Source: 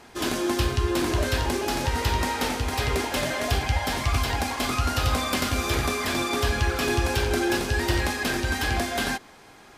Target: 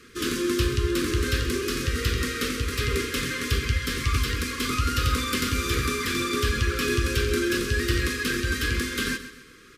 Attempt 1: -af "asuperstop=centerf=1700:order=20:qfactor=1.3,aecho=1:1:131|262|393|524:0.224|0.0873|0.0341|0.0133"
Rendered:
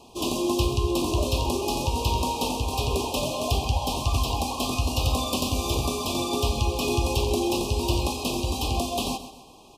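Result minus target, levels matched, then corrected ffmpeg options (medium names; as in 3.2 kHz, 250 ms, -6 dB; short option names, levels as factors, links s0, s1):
2 kHz band -10.0 dB
-af "asuperstop=centerf=750:order=20:qfactor=1.3,aecho=1:1:131|262|393|524:0.224|0.0873|0.0341|0.0133"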